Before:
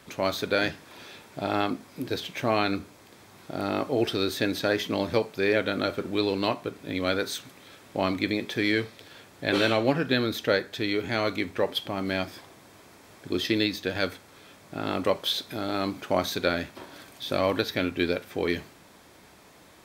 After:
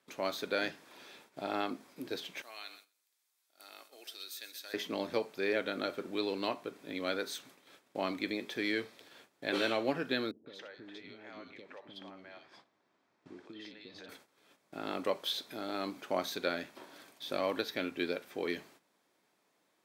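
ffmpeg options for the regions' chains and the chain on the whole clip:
ffmpeg -i in.wav -filter_complex "[0:a]asettb=1/sr,asplit=3[link_01][link_02][link_03];[link_01]atrim=end=2.424[link_04];[link_02]atrim=start=2.42:end=4.74,asetpts=PTS-STARTPTS,afade=type=in:duration=0.004:curve=qsin,afade=type=out:start_time=2.316:duration=0.004:curve=qsin,highpass=230,aderivative,aecho=1:1:126|252|378:0.251|0.0653|0.017,atrim=end_sample=102312[link_05];[link_03]atrim=start=4.736[link_06];[link_04][link_05]acrossfade=duration=0.004:curve1=hsin:curve2=qsin[link_07];[link_07][link_06]acrossfade=duration=0.004:curve1=qsin:curve2=hsin,asettb=1/sr,asplit=3[link_08][link_09][link_10];[link_08]atrim=end=10.314[link_11];[link_09]atrim=start=10.31:end=14.09,asetpts=PTS-STARTPTS,afade=type=in:duration=0.004:curve=qsin,afade=type=out:start_time=3.776:duration=0.004:curve=qsin,lowpass=4000,acompressor=threshold=-36dB:ratio=4:attack=3.2:release=140:knee=1:detection=peak,acrossover=split=460|2800[link_12][link_13][link_14];[link_13]adelay=150[link_15];[link_14]adelay=210[link_16];[link_12][link_15][link_16]amix=inputs=3:normalize=0,atrim=end_sample=166698[link_17];[link_10]atrim=start=14.086[link_18];[link_11][link_17]acrossfade=duration=0.004:curve1=hsin:curve2=qsin[link_19];[link_19][link_18]acrossfade=duration=0.004:curve1=qsin:curve2=hsin,agate=range=-13dB:threshold=-49dB:ratio=16:detection=peak,highpass=220,volume=-8dB" out.wav

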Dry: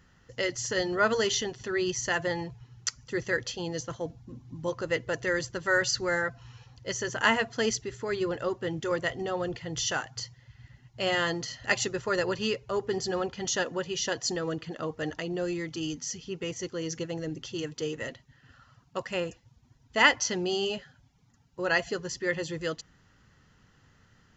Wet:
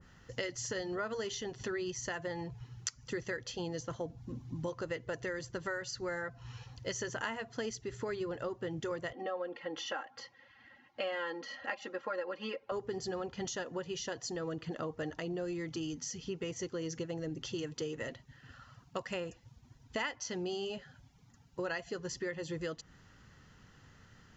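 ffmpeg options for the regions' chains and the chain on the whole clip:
ffmpeg -i in.wav -filter_complex "[0:a]asettb=1/sr,asplit=3[link_01][link_02][link_03];[link_01]atrim=end=9.134[link_04];[link_02]atrim=start=9.13:end=12.72,asetpts=PTS-STARTPTS,afade=type=in:duration=0.004:curve=qsin,afade=type=out:start_time=3.586:duration=0.004:curve=qsin,highpass=370,lowpass=2600,aecho=1:1:3.7:0.96,atrim=end_sample=158319[link_05];[link_03]atrim=start=12.716[link_06];[link_04][link_05]acrossfade=duration=0.004:curve1=hsin:curve2=qsin[link_07];[link_07][link_06]acrossfade=duration=0.004:curve1=qsin:curve2=hsin,acompressor=threshold=-37dB:ratio=6,adynamicequalizer=threshold=0.002:dfrequency=1600:dqfactor=0.7:tfrequency=1600:tqfactor=0.7:attack=5:release=100:ratio=0.375:range=2:mode=cutabove:tftype=highshelf,volume=2dB" out.wav

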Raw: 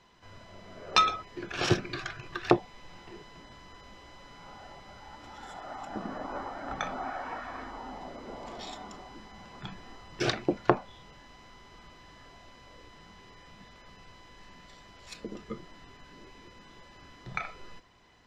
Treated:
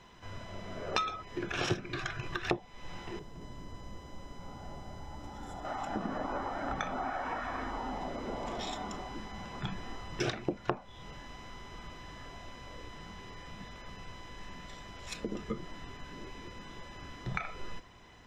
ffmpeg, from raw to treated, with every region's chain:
ffmpeg -i in.wav -filter_complex "[0:a]asettb=1/sr,asplit=3[link_01][link_02][link_03];[link_01]atrim=end=3.194[link_04];[link_02]atrim=start=3.19:end=5.65,asetpts=PTS-STARTPTS,afade=type=in:duration=0.004:curve=qsin,afade=type=out:start_time=2.456:duration=0.004:curve=qsin,equalizer=frequency=2300:width=0.36:gain=-12.5,aecho=1:1:223:0.631,atrim=end_sample=108486[link_05];[link_03]atrim=start=5.646[link_06];[link_04][link_05]acrossfade=duration=0.004:curve1=hsin:curve2=qsin[link_07];[link_07][link_06]acrossfade=duration=0.004:curve1=qsin:curve2=hsin,acompressor=threshold=-38dB:ratio=3,lowshelf=frequency=180:gain=4,bandreject=frequency=4500:width=6.9,volume=4.5dB" out.wav

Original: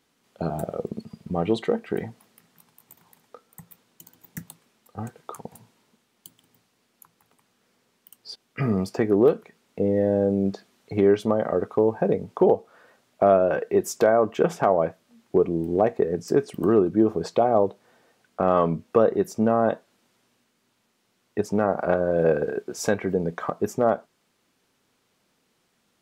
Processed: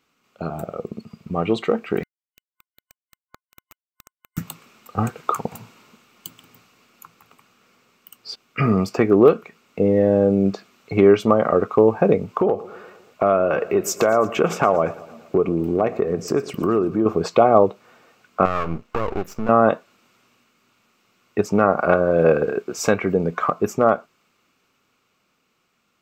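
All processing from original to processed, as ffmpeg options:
ffmpeg -i in.wav -filter_complex "[0:a]asettb=1/sr,asplit=3[link_01][link_02][link_03];[link_01]atrim=end=2.034[link_04];[link_02]atrim=start=2.03:end=4.38,asetpts=PTS-STARTPTS,afade=type=in:duration=0.004:curve=qsin,afade=type=out:start_time=2.346:duration=0.004:curve=qsin,acompressor=threshold=-51dB:ratio=3:attack=3.2:release=140:knee=1:detection=peak,acrusher=bits=4:dc=4:mix=0:aa=0.000001[link_05];[link_03]atrim=start=4.376[link_06];[link_04][link_05]acrossfade=duration=0.004:curve1=hsin:curve2=qsin[link_07];[link_07][link_06]acrossfade=duration=0.004:curve1=qsin:curve2=hsin,asettb=1/sr,asplit=3[link_08][link_09][link_10];[link_08]atrim=end=12.354[link_11];[link_09]atrim=start=12.35:end=17.06,asetpts=PTS-STARTPTS,afade=type=in:duration=0.004:curve=qsin,afade=type=out:start_time=4.706:duration=0.004:curve=qsin,acompressor=threshold=-26dB:ratio=2:attack=3.2:release=140:knee=1:detection=peak,aecho=1:1:116|232|348|464|580:0.119|0.0701|0.0414|0.0244|0.0144,atrim=end_sample=207711[link_12];[link_10]atrim=start=17.056[link_13];[link_11][link_12]acrossfade=duration=0.004:curve1=hsin:curve2=qsin[link_14];[link_14][link_13]acrossfade=duration=0.004:curve1=qsin:curve2=hsin,asettb=1/sr,asplit=3[link_15][link_16][link_17];[link_15]atrim=end=18.454[link_18];[link_16]atrim=start=18.45:end=19.49,asetpts=PTS-STARTPTS,afade=type=in:duration=0.004:curve=qsin,afade=type=out:start_time=1.036:duration=0.004:curve=qsin,highshelf=frequency=6700:gain=-5.5,acompressor=threshold=-21dB:ratio=6:attack=3.2:release=140:knee=1:detection=peak,aeval=exprs='max(val(0),0)':channel_layout=same[link_19];[link_17]atrim=start=19.486[link_20];[link_18][link_19]acrossfade=duration=0.004:curve1=hsin:curve2=qsin[link_21];[link_21][link_20]acrossfade=duration=0.004:curve1=qsin:curve2=hsin,superequalizer=10b=2.24:12b=2:16b=0.355,dynaudnorm=framelen=180:gausssize=21:maxgain=13.5dB,volume=-1dB" out.wav

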